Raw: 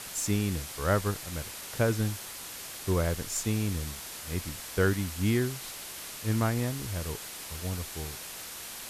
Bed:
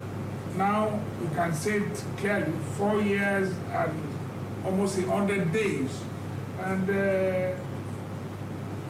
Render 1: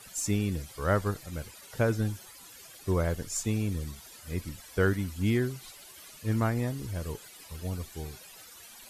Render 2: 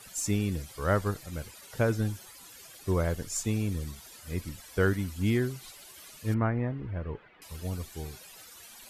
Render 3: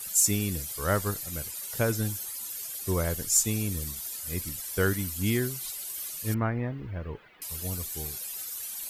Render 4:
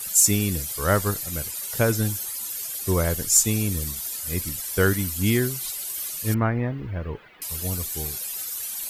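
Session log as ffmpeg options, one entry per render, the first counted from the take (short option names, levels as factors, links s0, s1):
-af "afftdn=nr=14:nf=-42"
-filter_complex "[0:a]asettb=1/sr,asplit=3[s0][s1][s2];[s0]atrim=end=6.344[s3];[s1]atrim=start=6.34:end=7.42,asetpts=PTS-STARTPTS,afade=t=in:d=0.004:c=qsin,afade=t=out:st=1.076:d=0.004:c=qsin,lowpass=f=2300:w=0.5412,lowpass=f=2300:w=1.3066[s4];[s2]atrim=start=7.416[s5];[s3][s4]acrossfade=d=0.004:c1=hsin:c2=qsin[s6];[s6][s5]acrossfade=d=0.004:c1=qsin:c2=hsin"
-af "aemphasis=mode=production:type=75fm"
-af "volume=1.88"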